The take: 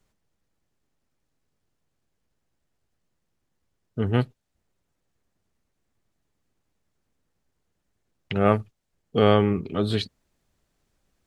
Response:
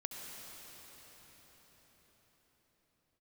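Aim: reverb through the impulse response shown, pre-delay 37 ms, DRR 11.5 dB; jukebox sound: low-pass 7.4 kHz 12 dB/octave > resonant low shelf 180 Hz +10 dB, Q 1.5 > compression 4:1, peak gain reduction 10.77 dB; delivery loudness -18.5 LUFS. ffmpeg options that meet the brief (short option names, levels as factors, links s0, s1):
-filter_complex "[0:a]asplit=2[s0][s1];[1:a]atrim=start_sample=2205,adelay=37[s2];[s1][s2]afir=irnorm=-1:irlink=0,volume=0.282[s3];[s0][s3]amix=inputs=2:normalize=0,lowpass=7400,lowshelf=f=180:t=q:w=1.5:g=10,acompressor=threshold=0.0891:ratio=4,volume=3.16"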